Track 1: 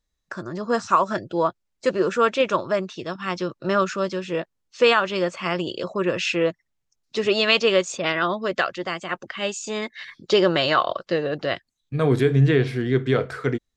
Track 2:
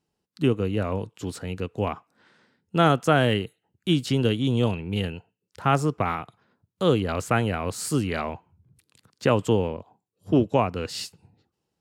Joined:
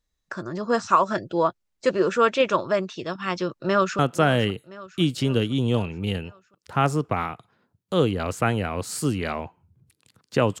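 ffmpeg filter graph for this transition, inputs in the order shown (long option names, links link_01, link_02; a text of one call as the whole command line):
ffmpeg -i cue0.wav -i cue1.wav -filter_complex "[0:a]apad=whole_dur=10.6,atrim=end=10.6,atrim=end=3.992[link_01];[1:a]atrim=start=2.878:end=9.49[link_02];[link_01][link_02]acrossfade=duration=0.004:curve1=hsin:curve2=hsin,asplit=2[link_03][link_04];[link_04]afade=type=in:start_time=3.49:duration=0.01,afade=type=out:start_time=3.99:duration=0.01,aecho=0:1:510|1020|1530|2040|2550|3060:0.16788|0.100728|0.0604369|0.0362622|0.0217573|0.0130544[link_05];[link_03][link_05]amix=inputs=2:normalize=0" out.wav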